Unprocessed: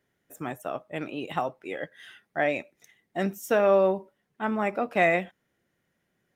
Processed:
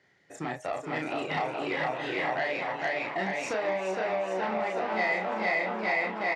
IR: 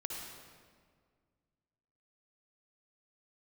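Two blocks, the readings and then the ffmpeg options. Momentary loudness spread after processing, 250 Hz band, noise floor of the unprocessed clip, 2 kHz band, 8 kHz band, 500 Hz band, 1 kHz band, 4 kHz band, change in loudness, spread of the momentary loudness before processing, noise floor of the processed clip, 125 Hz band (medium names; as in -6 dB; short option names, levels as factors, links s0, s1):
5 LU, -4.0 dB, -77 dBFS, +3.0 dB, -0.5 dB, -4.0 dB, +1.0 dB, +4.5 dB, -2.5 dB, 15 LU, -50 dBFS, -3.5 dB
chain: -filter_complex "[0:a]asplit=2[s0][s1];[s1]aecho=0:1:460|874|1247|1582|1884:0.631|0.398|0.251|0.158|0.1[s2];[s0][s2]amix=inputs=2:normalize=0,acompressor=threshold=0.0178:ratio=6,asoftclip=type=tanh:threshold=0.0251,highpass=100,equalizer=f=230:t=q:w=4:g=-5,equalizer=f=800:t=q:w=4:g=5,equalizer=f=2000:t=q:w=4:g=9,equalizer=f=4500:t=q:w=4:g=8,lowpass=f=6900:w=0.5412,lowpass=f=6900:w=1.3066,asplit=2[s3][s4];[s4]adelay=32,volume=0.708[s5];[s3][s5]amix=inputs=2:normalize=0,asplit=2[s6][s7];[s7]asplit=7[s8][s9][s10][s11][s12][s13][s14];[s8]adelay=422,afreqshift=120,volume=0.398[s15];[s9]adelay=844,afreqshift=240,volume=0.232[s16];[s10]adelay=1266,afreqshift=360,volume=0.133[s17];[s11]adelay=1688,afreqshift=480,volume=0.0776[s18];[s12]adelay=2110,afreqshift=600,volume=0.0452[s19];[s13]adelay=2532,afreqshift=720,volume=0.026[s20];[s14]adelay=2954,afreqshift=840,volume=0.0151[s21];[s15][s16][s17][s18][s19][s20][s21]amix=inputs=7:normalize=0[s22];[s6][s22]amix=inputs=2:normalize=0,volume=1.88"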